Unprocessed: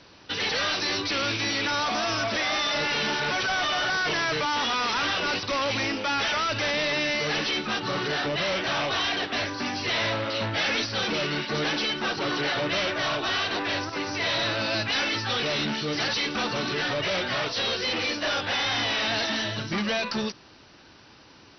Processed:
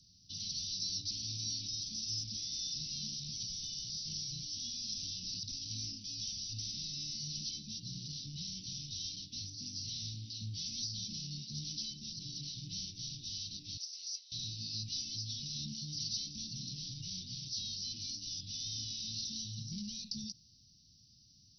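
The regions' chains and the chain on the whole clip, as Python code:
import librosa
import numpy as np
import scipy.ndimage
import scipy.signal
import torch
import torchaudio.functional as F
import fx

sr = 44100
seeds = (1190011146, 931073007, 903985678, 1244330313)

y = fx.chain(x, sr, fx.highpass(hz=640.0, slope=24),
    fx.over_compress(threshold_db=-33.0, ratio=-0.5), at=(13.77, 14.32))
y = scipy.signal.sosfilt(scipy.signal.cheby2(4, 80, [650.0, 1500.0], 'bandstop', fs=sr, output='sos'), y)
y = fx.high_shelf(y, sr, hz=2200.0, db=8.0)
y = y * 10.0 ** (-8.0 / 20.0)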